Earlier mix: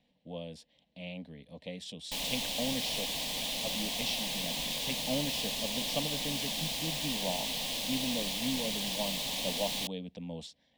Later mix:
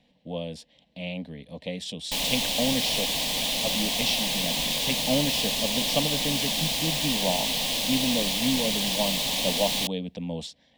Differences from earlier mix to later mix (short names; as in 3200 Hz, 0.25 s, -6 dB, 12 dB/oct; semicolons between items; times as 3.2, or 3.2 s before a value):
speech +8.5 dB; background +8.0 dB